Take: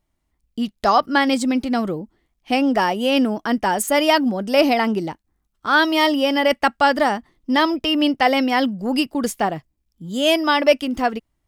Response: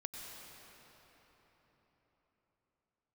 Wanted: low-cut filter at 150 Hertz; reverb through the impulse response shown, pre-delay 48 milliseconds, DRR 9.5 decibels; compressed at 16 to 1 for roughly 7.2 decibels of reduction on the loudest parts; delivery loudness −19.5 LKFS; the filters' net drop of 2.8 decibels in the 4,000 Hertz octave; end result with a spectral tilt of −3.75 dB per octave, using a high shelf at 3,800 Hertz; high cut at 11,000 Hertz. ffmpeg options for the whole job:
-filter_complex "[0:a]highpass=150,lowpass=11000,highshelf=frequency=3800:gain=3.5,equalizer=frequency=4000:width_type=o:gain=-6.5,acompressor=threshold=-17dB:ratio=16,asplit=2[link_01][link_02];[1:a]atrim=start_sample=2205,adelay=48[link_03];[link_02][link_03]afir=irnorm=-1:irlink=0,volume=-8dB[link_04];[link_01][link_04]amix=inputs=2:normalize=0,volume=3.5dB"

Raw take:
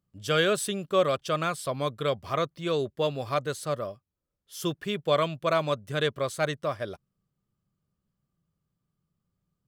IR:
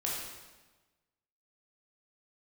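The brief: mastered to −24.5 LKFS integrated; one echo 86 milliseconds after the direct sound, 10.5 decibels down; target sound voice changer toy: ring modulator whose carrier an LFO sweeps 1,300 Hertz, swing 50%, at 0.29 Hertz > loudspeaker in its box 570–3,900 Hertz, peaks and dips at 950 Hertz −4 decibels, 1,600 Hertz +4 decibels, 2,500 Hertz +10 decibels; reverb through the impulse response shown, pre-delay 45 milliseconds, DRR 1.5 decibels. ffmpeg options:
-filter_complex "[0:a]aecho=1:1:86:0.299,asplit=2[link_01][link_02];[1:a]atrim=start_sample=2205,adelay=45[link_03];[link_02][link_03]afir=irnorm=-1:irlink=0,volume=-6dB[link_04];[link_01][link_04]amix=inputs=2:normalize=0,aeval=exprs='val(0)*sin(2*PI*1300*n/s+1300*0.5/0.29*sin(2*PI*0.29*n/s))':channel_layout=same,highpass=570,equalizer=frequency=950:width_type=q:width=4:gain=-4,equalizer=frequency=1600:width_type=q:width=4:gain=4,equalizer=frequency=2500:width_type=q:width=4:gain=10,lowpass=frequency=3900:width=0.5412,lowpass=frequency=3900:width=1.3066"

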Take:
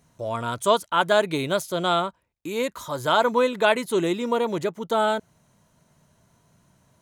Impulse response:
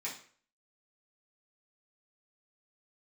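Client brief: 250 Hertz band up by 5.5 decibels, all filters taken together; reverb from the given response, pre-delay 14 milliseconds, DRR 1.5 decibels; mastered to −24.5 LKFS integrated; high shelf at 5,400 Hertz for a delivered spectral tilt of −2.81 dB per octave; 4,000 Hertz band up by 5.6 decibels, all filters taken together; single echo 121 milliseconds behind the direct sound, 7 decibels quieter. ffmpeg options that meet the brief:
-filter_complex "[0:a]equalizer=frequency=250:width_type=o:gain=7,equalizer=frequency=4000:width_type=o:gain=5.5,highshelf=frequency=5400:gain=4,aecho=1:1:121:0.447,asplit=2[link_01][link_02];[1:a]atrim=start_sample=2205,adelay=14[link_03];[link_02][link_03]afir=irnorm=-1:irlink=0,volume=-3dB[link_04];[link_01][link_04]amix=inputs=2:normalize=0,volume=-5.5dB"

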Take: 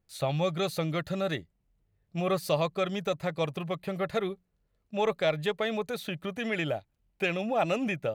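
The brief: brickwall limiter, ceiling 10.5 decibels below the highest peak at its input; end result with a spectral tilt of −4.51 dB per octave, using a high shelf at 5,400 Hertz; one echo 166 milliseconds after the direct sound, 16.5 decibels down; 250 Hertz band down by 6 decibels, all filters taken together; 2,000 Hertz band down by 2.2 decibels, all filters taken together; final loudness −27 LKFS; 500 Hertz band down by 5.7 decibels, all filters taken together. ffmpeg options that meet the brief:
ffmpeg -i in.wav -af "equalizer=frequency=250:width_type=o:gain=-8.5,equalizer=frequency=500:width_type=o:gain=-5,equalizer=frequency=2000:width_type=o:gain=-4,highshelf=frequency=5400:gain=9,alimiter=level_in=3dB:limit=-24dB:level=0:latency=1,volume=-3dB,aecho=1:1:166:0.15,volume=11dB" out.wav

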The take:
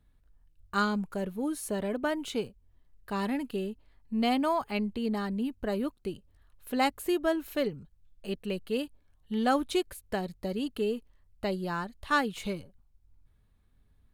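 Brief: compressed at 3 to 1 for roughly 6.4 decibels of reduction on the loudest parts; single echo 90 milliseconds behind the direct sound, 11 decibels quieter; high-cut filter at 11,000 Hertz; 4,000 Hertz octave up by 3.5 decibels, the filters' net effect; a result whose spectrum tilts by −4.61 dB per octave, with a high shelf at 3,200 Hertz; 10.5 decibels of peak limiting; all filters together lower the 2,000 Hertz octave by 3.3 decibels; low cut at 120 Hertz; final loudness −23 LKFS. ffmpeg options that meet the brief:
ffmpeg -i in.wav -af "highpass=120,lowpass=11000,equalizer=frequency=2000:width_type=o:gain=-7,highshelf=frequency=3200:gain=4.5,equalizer=frequency=4000:width_type=o:gain=4,acompressor=threshold=-31dB:ratio=3,alimiter=level_in=7.5dB:limit=-24dB:level=0:latency=1,volume=-7.5dB,aecho=1:1:90:0.282,volume=17dB" out.wav

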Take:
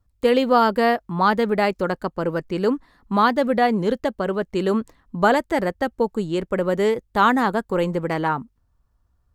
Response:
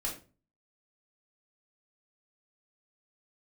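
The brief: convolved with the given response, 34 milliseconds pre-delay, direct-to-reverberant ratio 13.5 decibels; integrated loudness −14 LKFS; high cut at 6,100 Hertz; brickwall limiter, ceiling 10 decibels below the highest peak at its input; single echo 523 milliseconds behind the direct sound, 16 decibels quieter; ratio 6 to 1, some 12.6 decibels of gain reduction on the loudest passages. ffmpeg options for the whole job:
-filter_complex "[0:a]lowpass=6100,acompressor=threshold=-26dB:ratio=6,alimiter=level_in=0.5dB:limit=-24dB:level=0:latency=1,volume=-0.5dB,aecho=1:1:523:0.158,asplit=2[link_01][link_02];[1:a]atrim=start_sample=2205,adelay=34[link_03];[link_02][link_03]afir=irnorm=-1:irlink=0,volume=-16dB[link_04];[link_01][link_04]amix=inputs=2:normalize=0,volume=20dB"

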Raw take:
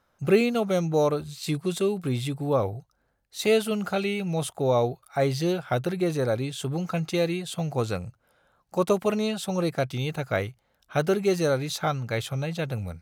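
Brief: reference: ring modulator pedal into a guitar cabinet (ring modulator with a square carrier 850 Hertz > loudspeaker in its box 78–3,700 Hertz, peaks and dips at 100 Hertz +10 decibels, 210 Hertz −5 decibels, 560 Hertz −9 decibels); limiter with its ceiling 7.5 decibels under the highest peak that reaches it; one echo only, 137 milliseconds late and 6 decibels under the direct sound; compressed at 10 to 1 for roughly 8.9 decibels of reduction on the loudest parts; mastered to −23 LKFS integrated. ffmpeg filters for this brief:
ffmpeg -i in.wav -af "acompressor=threshold=-24dB:ratio=10,alimiter=limit=-22dB:level=0:latency=1,aecho=1:1:137:0.501,aeval=exprs='val(0)*sgn(sin(2*PI*850*n/s))':channel_layout=same,highpass=78,equalizer=frequency=100:width_type=q:width=4:gain=10,equalizer=frequency=210:width_type=q:width=4:gain=-5,equalizer=frequency=560:width_type=q:width=4:gain=-9,lowpass=frequency=3700:width=0.5412,lowpass=frequency=3700:width=1.3066,volume=8dB" out.wav

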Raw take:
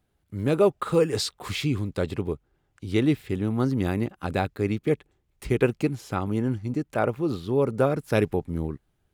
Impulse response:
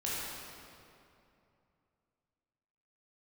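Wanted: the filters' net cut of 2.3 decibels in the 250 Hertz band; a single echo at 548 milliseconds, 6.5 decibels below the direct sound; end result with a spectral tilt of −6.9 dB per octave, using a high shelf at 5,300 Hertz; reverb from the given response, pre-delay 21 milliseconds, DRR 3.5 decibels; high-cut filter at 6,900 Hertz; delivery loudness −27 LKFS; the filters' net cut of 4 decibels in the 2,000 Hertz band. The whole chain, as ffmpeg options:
-filter_complex "[0:a]lowpass=6900,equalizer=frequency=250:width_type=o:gain=-3,equalizer=frequency=2000:width_type=o:gain=-4.5,highshelf=frequency=5300:gain=-6,aecho=1:1:548:0.473,asplit=2[link_01][link_02];[1:a]atrim=start_sample=2205,adelay=21[link_03];[link_02][link_03]afir=irnorm=-1:irlink=0,volume=-9dB[link_04];[link_01][link_04]amix=inputs=2:normalize=0,volume=-1.5dB"

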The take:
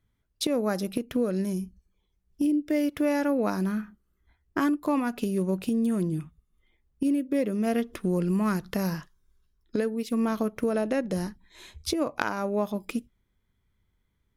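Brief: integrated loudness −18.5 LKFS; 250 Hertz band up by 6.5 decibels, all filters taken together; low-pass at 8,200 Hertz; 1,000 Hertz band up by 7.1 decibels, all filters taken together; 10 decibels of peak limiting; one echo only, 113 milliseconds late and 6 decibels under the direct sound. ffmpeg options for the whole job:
ffmpeg -i in.wav -af "lowpass=8200,equalizer=frequency=250:width_type=o:gain=7.5,equalizer=frequency=1000:width_type=o:gain=8.5,alimiter=limit=-14dB:level=0:latency=1,aecho=1:1:113:0.501,volume=4.5dB" out.wav

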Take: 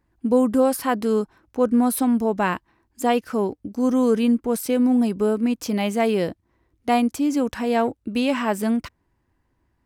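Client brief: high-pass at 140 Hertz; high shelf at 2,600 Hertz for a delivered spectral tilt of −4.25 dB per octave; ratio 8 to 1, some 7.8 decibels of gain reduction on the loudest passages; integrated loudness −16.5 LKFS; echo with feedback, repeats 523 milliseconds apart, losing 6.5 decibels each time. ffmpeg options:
ffmpeg -i in.wav -af "highpass=140,highshelf=frequency=2600:gain=5.5,acompressor=threshold=-22dB:ratio=8,aecho=1:1:523|1046|1569|2092|2615|3138:0.473|0.222|0.105|0.0491|0.0231|0.0109,volume=10dB" out.wav

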